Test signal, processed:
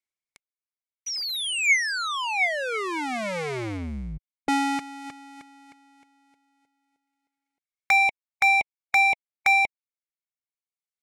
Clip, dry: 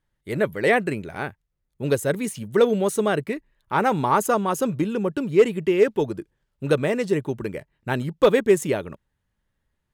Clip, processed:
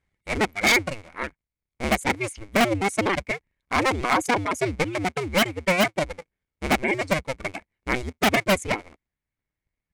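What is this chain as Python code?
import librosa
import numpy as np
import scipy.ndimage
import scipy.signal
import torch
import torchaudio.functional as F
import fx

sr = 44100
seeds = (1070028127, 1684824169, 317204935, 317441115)

y = fx.cycle_switch(x, sr, every=2, mode='inverted')
y = scipy.signal.sosfilt(scipy.signal.butter(4, 10000.0, 'lowpass', fs=sr, output='sos'), y)
y = fx.dereverb_blind(y, sr, rt60_s=1.3)
y = fx.peak_eq(y, sr, hz=2200.0, db=14.5, octaves=0.22)
y = 10.0 ** (-11.5 / 20.0) * (np.abs((y / 10.0 ** (-11.5 / 20.0) + 3.0) % 4.0 - 2.0) - 1.0)
y = y * librosa.db_to_amplitude(-1.0)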